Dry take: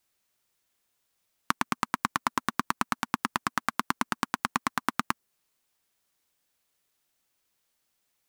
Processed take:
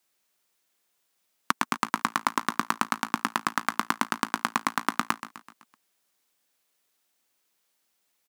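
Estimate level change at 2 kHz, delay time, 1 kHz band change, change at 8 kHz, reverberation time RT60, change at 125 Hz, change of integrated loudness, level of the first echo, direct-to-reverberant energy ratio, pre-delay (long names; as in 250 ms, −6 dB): +2.5 dB, 127 ms, +2.5 dB, +2.5 dB, no reverb audible, −2.0 dB, +2.0 dB, −13.0 dB, no reverb audible, no reverb audible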